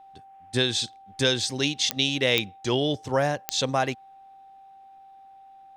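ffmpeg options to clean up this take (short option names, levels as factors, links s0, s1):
-af "adeclick=t=4,bandreject=f=780:w=30"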